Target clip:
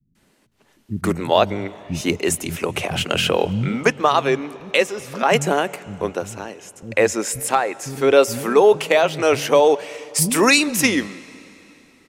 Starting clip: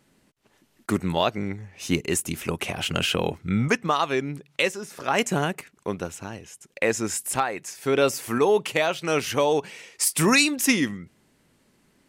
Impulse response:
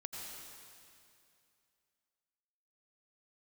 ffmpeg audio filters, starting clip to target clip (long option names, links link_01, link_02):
-filter_complex "[0:a]adynamicequalizer=threshold=0.02:dfrequency=560:dqfactor=1.1:tfrequency=560:tqfactor=1.1:attack=5:release=100:ratio=0.375:range=2.5:mode=boostabove:tftype=bell,acrossover=split=210[link_01][link_02];[link_02]adelay=150[link_03];[link_01][link_03]amix=inputs=2:normalize=0,asplit=2[link_04][link_05];[1:a]atrim=start_sample=2205,asetrate=33075,aresample=44100,lowpass=6800[link_06];[link_05][link_06]afir=irnorm=-1:irlink=0,volume=-18dB[link_07];[link_04][link_07]amix=inputs=2:normalize=0,volume=3.5dB"